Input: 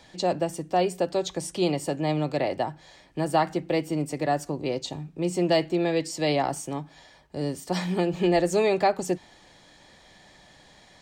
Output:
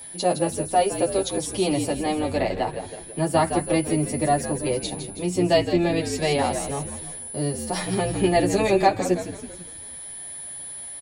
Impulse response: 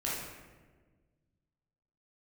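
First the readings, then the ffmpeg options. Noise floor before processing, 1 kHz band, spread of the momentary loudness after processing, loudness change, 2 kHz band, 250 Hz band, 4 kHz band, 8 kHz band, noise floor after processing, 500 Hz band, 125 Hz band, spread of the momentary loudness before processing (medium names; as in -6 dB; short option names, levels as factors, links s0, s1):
-55 dBFS, +3.5 dB, 13 LU, +3.0 dB, +3.5 dB, +3.0 dB, +3.0 dB, +9.5 dB, -39 dBFS, +2.5 dB, +3.5 dB, 9 LU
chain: -filter_complex "[0:a]asplit=7[s0][s1][s2][s3][s4][s5][s6];[s1]adelay=163,afreqshift=-61,volume=0.355[s7];[s2]adelay=326,afreqshift=-122,volume=0.174[s8];[s3]adelay=489,afreqshift=-183,volume=0.0851[s9];[s4]adelay=652,afreqshift=-244,volume=0.0417[s10];[s5]adelay=815,afreqshift=-305,volume=0.0204[s11];[s6]adelay=978,afreqshift=-366,volume=0.01[s12];[s0][s7][s8][s9][s10][s11][s12]amix=inputs=7:normalize=0,aeval=exprs='val(0)+0.0112*sin(2*PI*10000*n/s)':c=same,asplit=2[s13][s14];[s14]adelay=9,afreqshift=-0.31[s15];[s13][s15]amix=inputs=2:normalize=1,volume=1.88"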